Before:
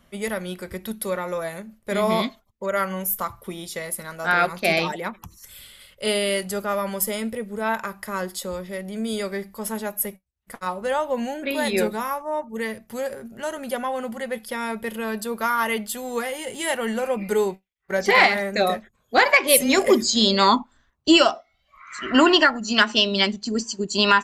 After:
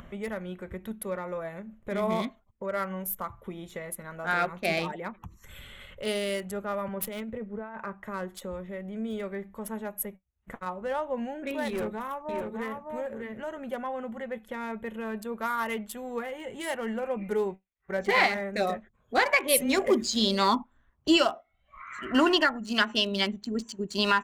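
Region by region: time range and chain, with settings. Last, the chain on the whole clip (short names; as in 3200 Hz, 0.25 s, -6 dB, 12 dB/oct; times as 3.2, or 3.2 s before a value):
6.88–8.04 median filter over 5 samples + negative-ratio compressor -29 dBFS + three-band expander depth 100%
11.68–13.48 hard clip -21 dBFS + echo 0.606 s -4.5 dB
whole clip: Wiener smoothing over 9 samples; low shelf 140 Hz +4.5 dB; upward compressor, threshold -27 dBFS; gain -7 dB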